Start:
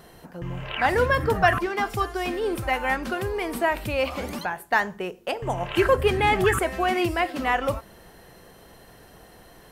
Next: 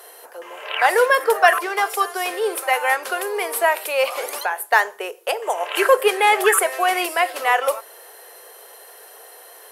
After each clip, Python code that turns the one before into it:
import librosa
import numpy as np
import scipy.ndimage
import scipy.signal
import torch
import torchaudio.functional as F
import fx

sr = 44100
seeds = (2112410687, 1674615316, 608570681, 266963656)

y = scipy.signal.sosfilt(scipy.signal.ellip(4, 1.0, 80, 430.0, 'highpass', fs=sr, output='sos'), x)
y = fx.peak_eq(y, sr, hz=11000.0, db=12.5, octaves=0.79)
y = y * librosa.db_to_amplitude(6.0)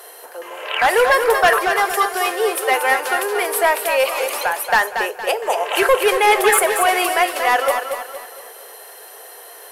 y = 10.0 ** (-11.0 / 20.0) * np.tanh(x / 10.0 ** (-11.0 / 20.0))
y = fx.echo_feedback(y, sr, ms=232, feedback_pct=40, wet_db=-7.0)
y = y * librosa.db_to_amplitude(3.5)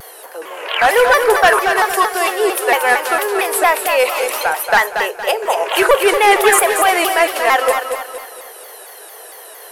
y = fx.vibrato_shape(x, sr, shape='saw_down', rate_hz=4.4, depth_cents=160.0)
y = y * librosa.db_to_amplitude(3.0)